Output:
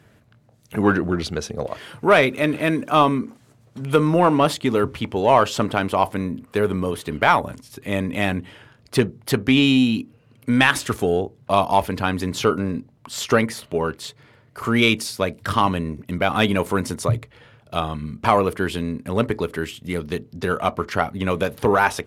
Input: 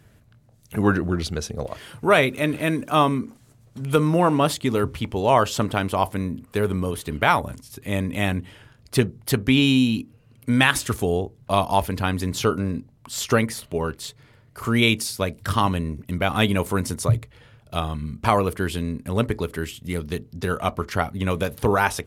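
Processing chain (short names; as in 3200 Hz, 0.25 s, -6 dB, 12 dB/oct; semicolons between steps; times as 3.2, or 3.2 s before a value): HPF 190 Hz 6 dB/oct; high shelf 5500 Hz -9 dB; in parallel at -3.5 dB: soft clip -14.5 dBFS, distortion -12 dB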